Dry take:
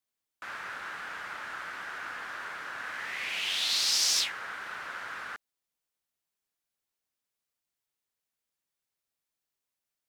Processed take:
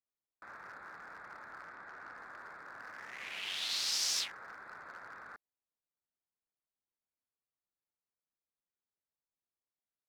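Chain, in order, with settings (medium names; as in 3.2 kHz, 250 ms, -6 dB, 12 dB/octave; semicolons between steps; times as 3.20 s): local Wiener filter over 15 samples; 1.66–2.17 s: treble shelf 9.5 kHz -9.5 dB; trim -6.5 dB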